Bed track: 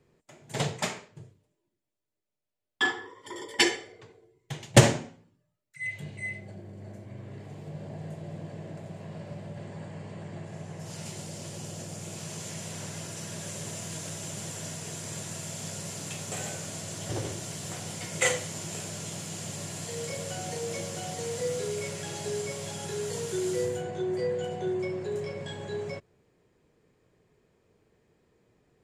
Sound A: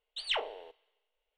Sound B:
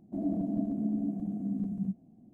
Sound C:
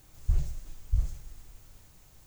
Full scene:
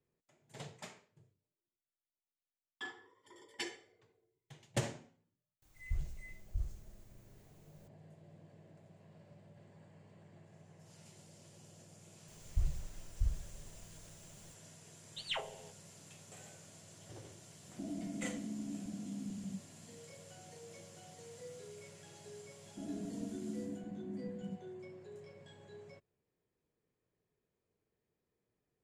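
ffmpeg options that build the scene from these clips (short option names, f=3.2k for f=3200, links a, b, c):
-filter_complex "[3:a]asplit=2[a][b];[2:a]asplit=2[c][d];[0:a]volume=-19dB[e];[1:a]aecho=1:1:7.5:0.99[f];[c]acompressor=threshold=-45dB:ratio=2:attack=65:release=47:knee=1:detection=peak[g];[a]atrim=end=2.26,asetpts=PTS-STARTPTS,volume=-11dB,afade=t=in:d=0.004:c=hsin,afade=t=out:st=2.256:d=0.004:c=hsin,adelay=5620[h];[b]atrim=end=2.26,asetpts=PTS-STARTPTS,volume=-7dB,afade=t=in:d=0.004:c=hsin,afade=t=out:st=2.256:d=0.004:c=hsin,adelay=12280[i];[f]atrim=end=1.37,asetpts=PTS-STARTPTS,volume=-9.5dB,afade=t=in:d=0.004:c=hsin,afade=t=out:st=1.366:d=0.004:c=hsin,adelay=15000[j];[g]atrim=end=2.33,asetpts=PTS-STARTPTS,volume=-5dB,afade=t=in:d=0.004:c=hsin,afade=t=out:st=2.326:d=0.004:c=hsin,adelay=17660[k];[d]atrim=end=2.33,asetpts=PTS-STARTPTS,volume=-11.5dB,afade=t=in:d=0.004:c=hsin,afade=t=out:st=2.326:d=0.004:c=hsin,adelay=22640[l];[e][h][i][j][k][l]amix=inputs=6:normalize=0"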